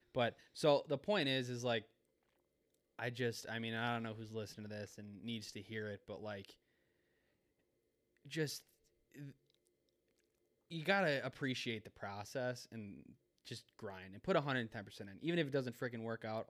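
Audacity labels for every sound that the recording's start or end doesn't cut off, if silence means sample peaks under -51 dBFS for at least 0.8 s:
2.990000	6.520000	sound
8.260000	9.310000	sound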